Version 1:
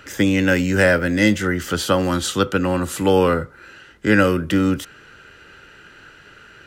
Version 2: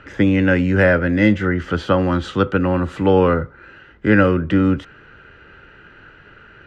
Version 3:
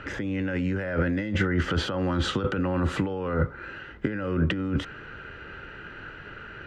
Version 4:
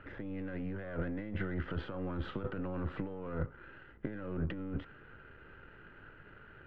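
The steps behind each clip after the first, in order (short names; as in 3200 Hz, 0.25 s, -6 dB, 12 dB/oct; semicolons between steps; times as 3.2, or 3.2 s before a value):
LPF 2300 Hz 12 dB/oct; low shelf 120 Hz +5.5 dB; gain +1 dB
negative-ratio compressor -23 dBFS, ratio -1; gain -3.5 dB
half-wave gain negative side -7 dB; air absorption 460 m; gain -8.5 dB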